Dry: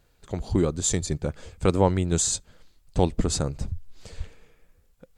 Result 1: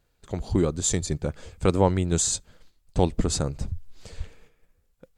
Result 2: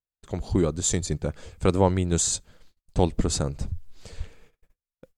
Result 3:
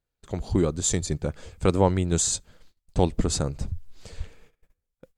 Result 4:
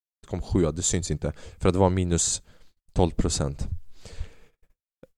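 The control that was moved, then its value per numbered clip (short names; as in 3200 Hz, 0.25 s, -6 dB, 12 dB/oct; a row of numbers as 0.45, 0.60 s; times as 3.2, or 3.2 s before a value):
gate, range: -6, -38, -21, -58 dB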